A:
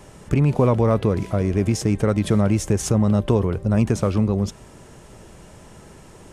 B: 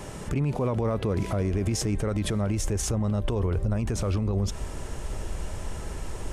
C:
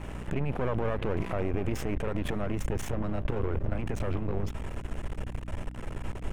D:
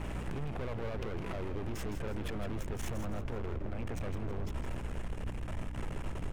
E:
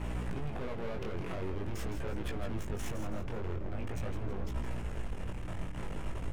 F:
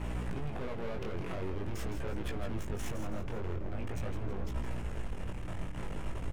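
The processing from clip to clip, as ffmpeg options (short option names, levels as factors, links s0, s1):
-af "asubboost=boost=6:cutoff=64,acompressor=threshold=0.0708:ratio=2.5,alimiter=level_in=1.12:limit=0.0631:level=0:latency=1:release=92,volume=0.891,volume=2"
-af "aeval=exprs='max(val(0),0)':c=same,aeval=exprs='val(0)+0.01*(sin(2*PI*60*n/s)+sin(2*PI*2*60*n/s)/2+sin(2*PI*3*60*n/s)/3+sin(2*PI*4*60*n/s)/4+sin(2*PI*5*60*n/s)/5)':c=same,highshelf=f=3600:t=q:w=1.5:g=-8.5"
-filter_complex "[0:a]acompressor=threshold=0.0282:ratio=6,asoftclip=type=hard:threshold=0.0224,asplit=2[s0][s1];[s1]asplit=4[s2][s3][s4][s5];[s2]adelay=162,afreqshift=-67,volume=0.376[s6];[s3]adelay=324,afreqshift=-134,volume=0.15[s7];[s4]adelay=486,afreqshift=-201,volume=0.0603[s8];[s5]adelay=648,afreqshift=-268,volume=0.024[s9];[s6][s7][s8][s9]amix=inputs=4:normalize=0[s10];[s0][s10]amix=inputs=2:normalize=0,volume=1.19"
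-af "flanger=delay=16:depth=7.2:speed=0.45,volume=1.41"
-af "aecho=1:1:493:0.0668"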